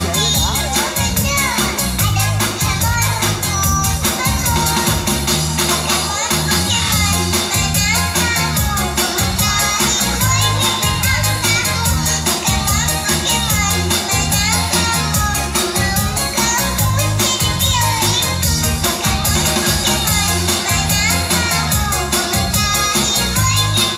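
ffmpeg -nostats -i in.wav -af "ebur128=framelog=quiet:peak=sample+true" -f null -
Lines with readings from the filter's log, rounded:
Integrated loudness:
  I:         -14.5 LUFS
  Threshold: -24.5 LUFS
Loudness range:
  LRA:         1.0 LU
  Threshold: -34.6 LUFS
  LRA low:   -15.2 LUFS
  LRA high:  -14.1 LUFS
Sample peak:
  Peak:       -3.6 dBFS
True peak:
  Peak:       -2.9 dBFS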